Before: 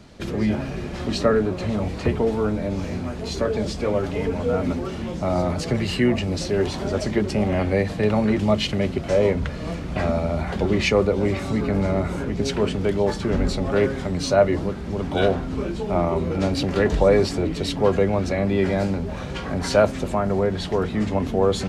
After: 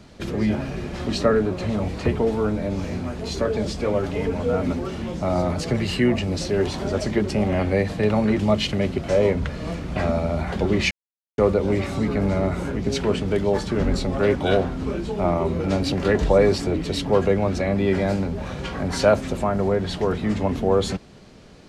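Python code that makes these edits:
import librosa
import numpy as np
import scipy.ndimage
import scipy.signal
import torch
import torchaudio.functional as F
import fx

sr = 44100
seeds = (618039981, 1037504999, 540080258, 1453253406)

y = fx.edit(x, sr, fx.insert_silence(at_s=10.91, length_s=0.47),
    fx.cut(start_s=13.88, length_s=1.18), tone=tone)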